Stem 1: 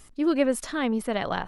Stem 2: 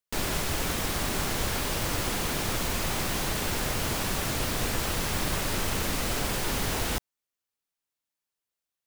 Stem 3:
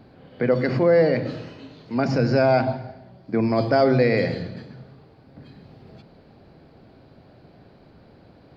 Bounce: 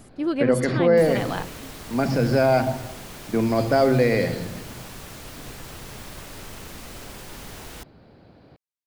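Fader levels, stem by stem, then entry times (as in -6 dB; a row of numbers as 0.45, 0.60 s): -1.5, -10.5, -0.5 dB; 0.00, 0.85, 0.00 s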